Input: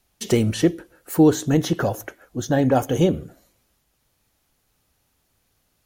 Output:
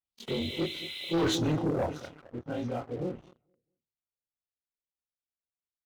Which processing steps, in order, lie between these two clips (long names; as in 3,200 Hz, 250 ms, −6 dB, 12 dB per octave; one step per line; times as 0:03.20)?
every overlapping window played backwards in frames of 63 ms
source passing by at 0:01.31, 16 m/s, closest 1.3 metres
on a send: repeating echo 218 ms, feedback 36%, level −16.5 dB
on the sum: auto-filter low-pass sine 1.6 Hz 510–4,800 Hz
Butterworth band-reject 1,700 Hz, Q 5.4
reversed playback
downward compressor 8 to 1, threshold −31 dBFS, peak gain reduction 14 dB
reversed playback
healed spectral selection 0:00.31–0:01.23, 2,000–4,100 Hz after
leveller curve on the samples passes 3